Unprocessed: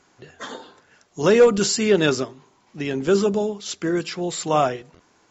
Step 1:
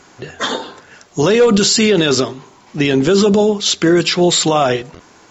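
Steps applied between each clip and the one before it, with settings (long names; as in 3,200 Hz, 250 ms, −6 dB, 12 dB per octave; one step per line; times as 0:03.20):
dynamic equaliser 3,700 Hz, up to +7 dB, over −45 dBFS, Q 2
boost into a limiter +17.5 dB
level −3.5 dB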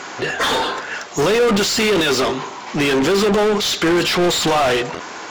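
mid-hump overdrive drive 30 dB, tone 3,300 Hz, clips at −4 dBFS
level −6 dB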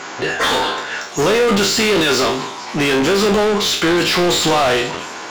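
peak hold with a decay on every bin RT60 0.45 s
echo through a band-pass that steps 227 ms, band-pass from 3,300 Hz, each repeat 0.7 octaves, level −12 dB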